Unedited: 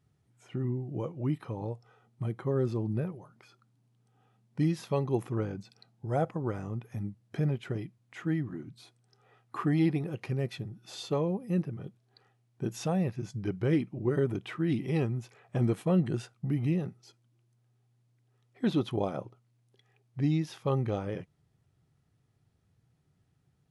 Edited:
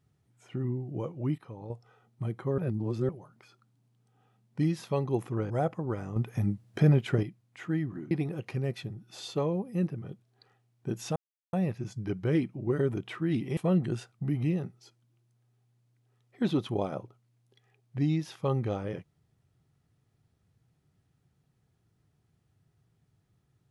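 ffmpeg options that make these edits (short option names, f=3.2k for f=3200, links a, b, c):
-filter_complex "[0:a]asplit=11[a][b][c][d][e][f][g][h][i][j][k];[a]atrim=end=1.382[l];[b]atrim=start=1.378:end=1.702,asetpts=PTS-STARTPTS,volume=-7dB[m];[c]atrim=start=1.698:end=2.582[n];[d]atrim=start=2.578:end=3.092,asetpts=PTS-STARTPTS,areverse[o];[e]atrim=start=3.088:end=5.502[p];[f]atrim=start=6.068:end=6.732[q];[g]atrim=start=6.728:end=7.802,asetpts=PTS-STARTPTS,volume=7.5dB[r];[h]atrim=start=7.798:end=8.682[s];[i]atrim=start=9.858:end=12.91,asetpts=PTS-STARTPTS,afade=t=out:st=3.048:d=0.004:c=hsin,apad=pad_dur=0.37[t];[j]atrim=start=12.91:end=14.952,asetpts=PTS-STARTPTS,afade=t=in:d=0.004:c=hsin[u];[k]atrim=start=15.788[v];[l][m]acrossfade=d=0.004:c1=hsin:c2=hsin[w];[w][n]acrossfade=d=0.004:c1=hsin:c2=hsin[x];[x][o]acrossfade=d=0.004:c1=hsin:c2=hsin[y];[y][p]acrossfade=d=0.004:c1=hsin:c2=hsin[z];[z][q]acrossfade=d=0.004:c1=hsin:c2=hsin[aa];[aa][r]acrossfade=d=0.004:c1=hsin:c2=hsin[ab];[ab][s]acrossfade=d=0.004:c1=hsin:c2=hsin[ac];[t][u]concat=n=2:v=0:a=1[ad];[ac][ad]acrossfade=d=0.004:c1=hsin:c2=hsin[ae];[ae][v]acrossfade=d=0.004:c1=hsin:c2=hsin"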